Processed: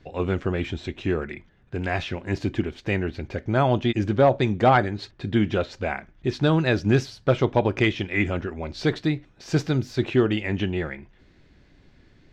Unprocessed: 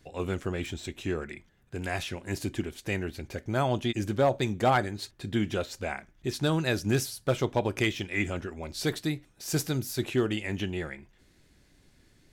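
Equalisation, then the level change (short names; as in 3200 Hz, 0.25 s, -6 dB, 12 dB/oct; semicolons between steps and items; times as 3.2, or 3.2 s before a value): air absorption 190 m; +7.0 dB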